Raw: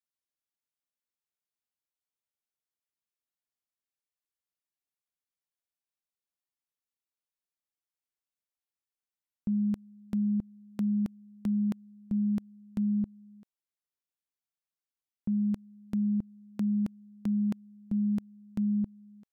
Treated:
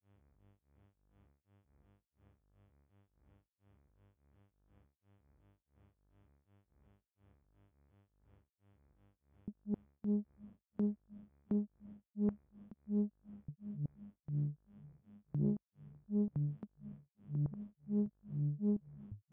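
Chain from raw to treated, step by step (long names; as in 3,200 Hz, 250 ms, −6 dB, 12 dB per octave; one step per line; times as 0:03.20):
low-pass filter 1,200 Hz 24 dB per octave
transient designer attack +10 dB, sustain −11 dB
output level in coarse steps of 17 dB
feedback delay with all-pass diffusion 834 ms, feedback 54%, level −16 dB
hum with harmonics 100 Hz, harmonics 35, −70 dBFS −7 dB per octave
granular cloud 248 ms, grains 2.8 per second, pitch spread up and down by 0 semitones
delay with pitch and tempo change per echo 80 ms, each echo −6 semitones, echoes 2
highs frequency-modulated by the lows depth 0.58 ms
level +3 dB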